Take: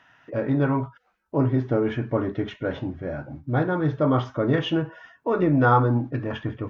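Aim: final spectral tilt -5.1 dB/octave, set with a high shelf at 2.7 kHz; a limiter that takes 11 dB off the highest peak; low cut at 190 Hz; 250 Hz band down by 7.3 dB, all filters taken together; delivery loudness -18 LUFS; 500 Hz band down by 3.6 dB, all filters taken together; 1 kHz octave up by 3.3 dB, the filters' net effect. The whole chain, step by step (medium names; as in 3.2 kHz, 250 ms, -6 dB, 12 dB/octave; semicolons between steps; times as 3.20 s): high-pass 190 Hz; peaking EQ 250 Hz -7 dB; peaking EQ 500 Hz -3.5 dB; peaking EQ 1 kHz +6.5 dB; treble shelf 2.7 kHz -5.5 dB; trim +12.5 dB; peak limiter -4.5 dBFS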